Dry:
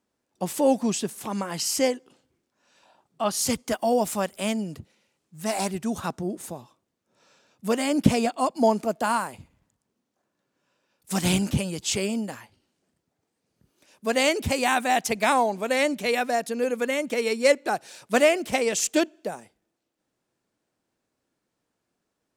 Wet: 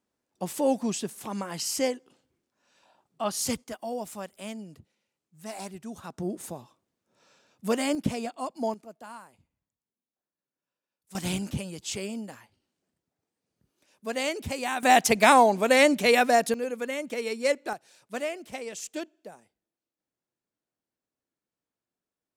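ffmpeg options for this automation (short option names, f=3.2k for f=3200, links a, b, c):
-af "asetnsamples=n=441:p=0,asendcmd='3.64 volume volume -11.5dB;6.18 volume volume -2dB;7.95 volume volume -9.5dB;8.74 volume volume -19.5dB;11.15 volume volume -7.5dB;14.83 volume volume 4dB;16.54 volume volume -6dB;17.73 volume volume -13dB',volume=-4dB"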